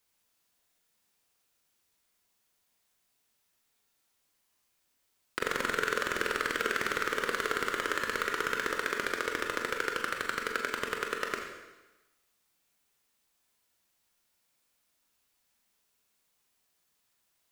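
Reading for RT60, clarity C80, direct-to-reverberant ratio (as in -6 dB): 1.1 s, 6.0 dB, 1.5 dB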